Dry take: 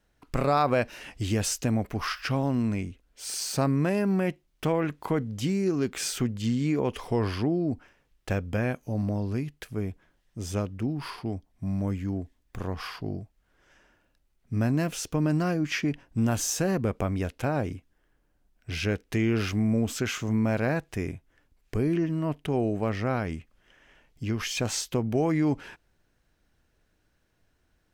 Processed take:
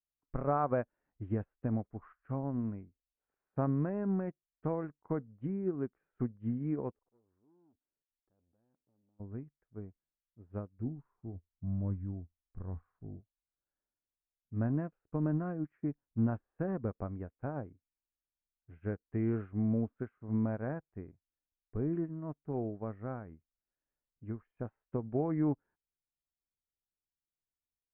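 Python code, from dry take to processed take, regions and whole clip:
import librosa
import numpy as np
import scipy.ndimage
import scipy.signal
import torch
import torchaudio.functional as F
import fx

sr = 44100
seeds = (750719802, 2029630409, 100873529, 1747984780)

y = fx.chain(x, sr, fx.level_steps(step_db=23),
    fx.peak_eq(hz=330.0, db=10.5, octaves=2.0),
    fx.transformer_sat(knee_hz=500.0), at=(6.92, 9.2))
y = fx.chain(y, sr, fx.low_shelf(hz=210.0, db=11.5),
    fx.comb_fb(f0_hz=84.0, decay_s=0.23, harmonics='all', damping=0.0, mix_pct=60), at=(10.78, 13.21))
y = scipy.signal.sosfilt(scipy.signal.cheby2(4, 60, 5100.0, 'lowpass', fs=sr, output='sos'), y)
y = fx.low_shelf(y, sr, hz=480.0, db=3.0)
y = fx.upward_expand(y, sr, threshold_db=-40.0, expansion=2.5)
y = y * librosa.db_to_amplitude(-6.0)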